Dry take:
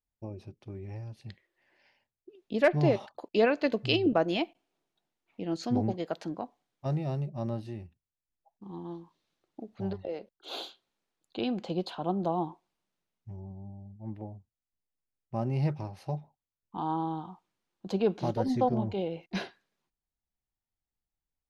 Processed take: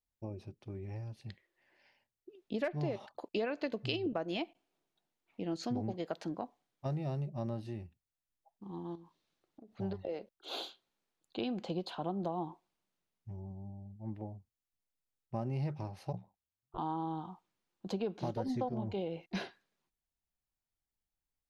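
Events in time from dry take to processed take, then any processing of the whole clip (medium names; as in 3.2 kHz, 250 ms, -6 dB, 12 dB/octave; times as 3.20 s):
8.95–9.78 s: compression 5:1, threshold -49 dBFS
16.12–16.77 s: ring modulator 29 Hz -> 170 Hz
whole clip: compression 6:1, threshold -30 dBFS; trim -2 dB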